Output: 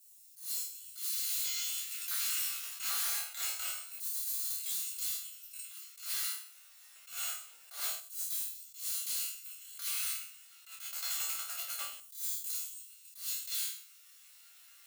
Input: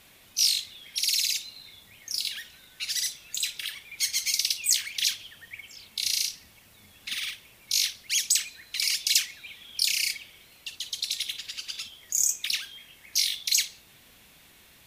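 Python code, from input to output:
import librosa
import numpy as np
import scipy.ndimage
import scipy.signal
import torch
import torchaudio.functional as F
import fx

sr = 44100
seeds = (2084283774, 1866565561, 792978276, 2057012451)

p1 = fx.bit_reversed(x, sr, seeds[0], block=128)
p2 = fx.leveller(p1, sr, passes=5, at=(1.3, 3.21))
p3 = fx.rider(p2, sr, range_db=4, speed_s=0.5)
p4 = p2 + (p3 * 10.0 ** (-2.5 / 20.0))
p5 = fx.resonator_bank(p4, sr, root=39, chord='fifth', decay_s=0.37)
p6 = np.clip(10.0 ** (34.5 / 20.0) * p5, -1.0, 1.0) / 10.0 ** (34.5 / 20.0)
p7 = fx.filter_lfo_highpass(p6, sr, shape='saw_down', hz=0.25, low_hz=510.0, high_hz=7600.0, q=0.72)
p8 = 10.0 ** (-32.0 / 20.0) * np.tanh(p7 / 10.0 ** (-32.0 / 20.0))
p9 = p8 + 10.0 ** (-18.0 / 20.0) * np.pad(p8, (int(124 * sr / 1000.0), 0))[:len(p8)]
p10 = fx.attack_slew(p9, sr, db_per_s=140.0)
y = p10 * 10.0 ** (4.0 / 20.0)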